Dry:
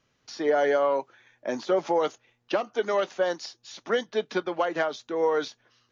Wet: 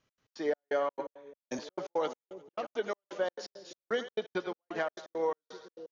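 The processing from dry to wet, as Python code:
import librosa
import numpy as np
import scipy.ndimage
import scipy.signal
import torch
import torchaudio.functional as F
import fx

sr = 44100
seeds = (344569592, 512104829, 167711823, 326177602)

y = fx.echo_split(x, sr, split_hz=460.0, low_ms=588, high_ms=88, feedback_pct=52, wet_db=-11.5)
y = fx.step_gate(y, sr, bpm=169, pattern='x.x.xx..x', floor_db=-60.0, edge_ms=4.5)
y = fx.band_widen(y, sr, depth_pct=100, at=(0.92, 1.59))
y = y * librosa.db_to_amplitude(-6.5)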